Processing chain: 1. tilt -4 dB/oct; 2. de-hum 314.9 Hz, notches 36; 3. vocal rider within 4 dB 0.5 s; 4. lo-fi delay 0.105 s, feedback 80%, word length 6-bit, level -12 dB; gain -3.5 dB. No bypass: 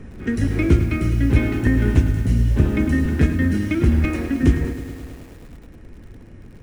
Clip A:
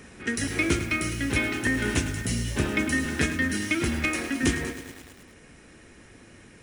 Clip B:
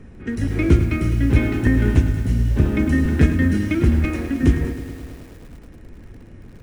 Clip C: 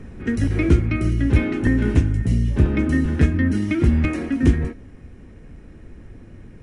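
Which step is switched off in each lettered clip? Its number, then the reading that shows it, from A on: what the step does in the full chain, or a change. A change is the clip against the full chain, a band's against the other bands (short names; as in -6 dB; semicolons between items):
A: 1, 125 Hz band -13.5 dB; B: 3, momentary loudness spread change +2 LU; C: 4, momentary loudness spread change -4 LU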